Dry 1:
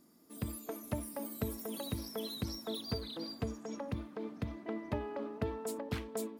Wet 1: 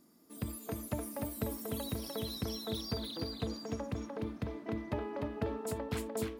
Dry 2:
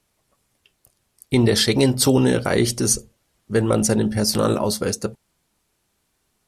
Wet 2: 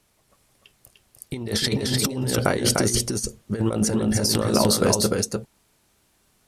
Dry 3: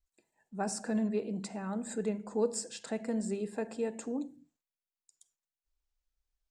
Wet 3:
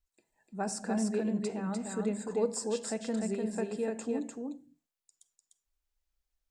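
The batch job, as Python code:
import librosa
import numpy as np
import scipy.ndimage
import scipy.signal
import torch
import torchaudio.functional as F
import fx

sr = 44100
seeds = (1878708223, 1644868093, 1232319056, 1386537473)

p1 = fx.over_compress(x, sr, threshold_db=-22.0, ratio=-0.5)
y = p1 + fx.echo_single(p1, sr, ms=299, db=-3.5, dry=0)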